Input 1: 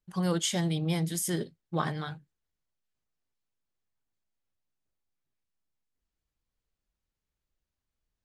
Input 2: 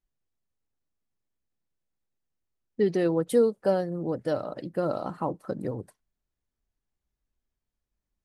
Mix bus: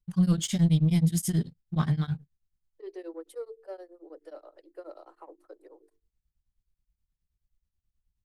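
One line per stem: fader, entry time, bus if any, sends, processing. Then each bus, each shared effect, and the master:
+2.5 dB, 0.00 s, no send, EQ curve 170 Hz 0 dB, 460 Hz -12 dB, 4200 Hz -4 dB; sample leveller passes 1
-14.0 dB, 0.00 s, no send, soft clip -13.5 dBFS, distortion -22 dB; steep high-pass 310 Hz 96 dB/oct; notches 50/100/150/200/250/300/350/400/450 Hz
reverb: off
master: low shelf 170 Hz +12 dB; beating tremolo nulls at 9.4 Hz

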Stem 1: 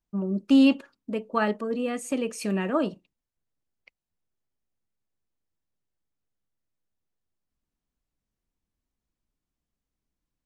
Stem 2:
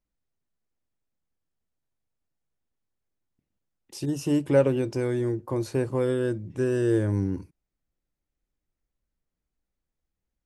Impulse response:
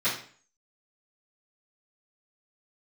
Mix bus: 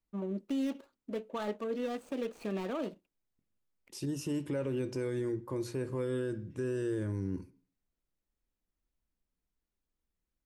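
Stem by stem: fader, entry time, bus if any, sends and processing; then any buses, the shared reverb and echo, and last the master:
-3.0 dB, 0.00 s, no send, median filter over 25 samples; bell 120 Hz -11.5 dB 1.6 oct; compressor 2:1, threshold -26 dBFS, peak gain reduction 5 dB
-5.5 dB, 0.00 s, send -23 dB, bell 730 Hz -9 dB 0.37 oct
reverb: on, RT60 0.45 s, pre-delay 3 ms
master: limiter -26.5 dBFS, peak gain reduction 10.5 dB

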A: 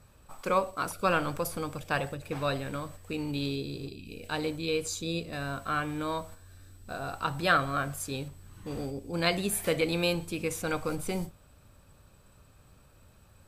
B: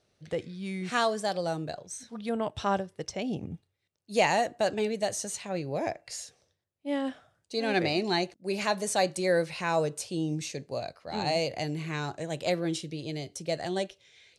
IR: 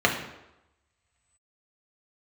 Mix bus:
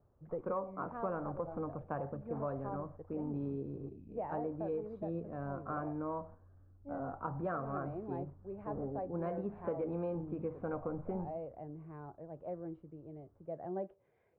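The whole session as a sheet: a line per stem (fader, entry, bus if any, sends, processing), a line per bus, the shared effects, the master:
-1.5 dB, 0.00 s, no send, soft clip -18 dBFS, distortion -18 dB; three-band expander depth 40%
-1.0 dB, 0.00 s, no send, auto duck -12 dB, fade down 0.85 s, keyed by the first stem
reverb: off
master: LPF 1100 Hz 24 dB/oct; low shelf 62 Hz -10 dB; compressor 5:1, threshold -34 dBFS, peak gain reduction 10 dB

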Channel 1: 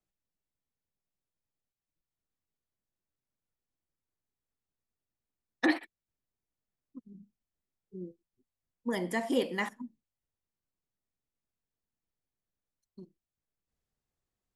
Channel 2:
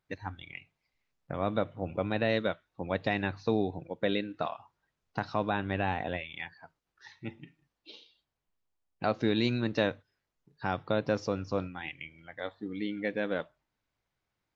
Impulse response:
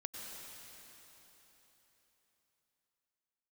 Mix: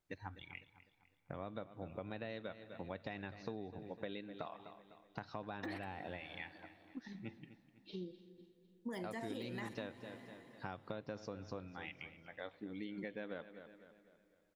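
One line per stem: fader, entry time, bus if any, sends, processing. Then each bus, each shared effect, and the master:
-1.0 dB, 0.00 s, send -9.5 dB, no echo send, de-esser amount 100%; limiter -26 dBFS, peak gain reduction 10 dB
-7.5 dB, 0.00 s, send -22 dB, echo send -16 dB, dry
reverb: on, RT60 4.0 s, pre-delay 88 ms
echo: feedback echo 0.251 s, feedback 44%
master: compressor 6:1, threshold -41 dBFS, peak gain reduction 14 dB

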